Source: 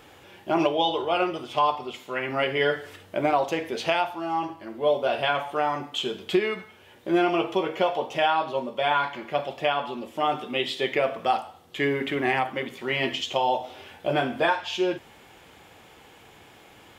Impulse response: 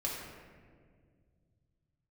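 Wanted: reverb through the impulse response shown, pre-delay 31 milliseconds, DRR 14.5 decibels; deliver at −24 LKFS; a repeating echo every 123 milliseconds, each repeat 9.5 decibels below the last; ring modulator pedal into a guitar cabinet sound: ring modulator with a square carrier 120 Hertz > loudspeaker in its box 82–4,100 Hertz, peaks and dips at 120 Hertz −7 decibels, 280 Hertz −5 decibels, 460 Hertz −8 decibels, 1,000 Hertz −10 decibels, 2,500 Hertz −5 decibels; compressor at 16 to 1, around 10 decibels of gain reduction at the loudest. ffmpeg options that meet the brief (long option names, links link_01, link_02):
-filter_complex "[0:a]acompressor=threshold=-27dB:ratio=16,aecho=1:1:123|246|369|492:0.335|0.111|0.0365|0.012,asplit=2[link_01][link_02];[1:a]atrim=start_sample=2205,adelay=31[link_03];[link_02][link_03]afir=irnorm=-1:irlink=0,volume=-18dB[link_04];[link_01][link_04]amix=inputs=2:normalize=0,aeval=exprs='val(0)*sgn(sin(2*PI*120*n/s))':channel_layout=same,highpass=82,equalizer=frequency=120:width_type=q:width=4:gain=-7,equalizer=frequency=280:width_type=q:width=4:gain=-5,equalizer=frequency=460:width_type=q:width=4:gain=-8,equalizer=frequency=1000:width_type=q:width=4:gain=-10,equalizer=frequency=2500:width_type=q:width=4:gain=-5,lowpass=frequency=4100:width=0.5412,lowpass=frequency=4100:width=1.3066,volume=11.5dB"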